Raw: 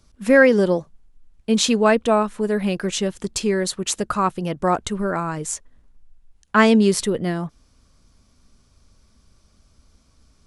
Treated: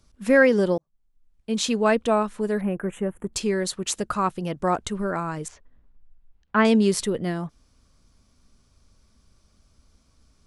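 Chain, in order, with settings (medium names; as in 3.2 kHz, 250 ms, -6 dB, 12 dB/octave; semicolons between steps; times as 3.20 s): 0.78–1.95 s: fade in; 2.61–3.33 s: Butterworth band-stop 4.8 kHz, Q 0.51; 5.48–6.65 s: distance through air 270 m; trim -3.5 dB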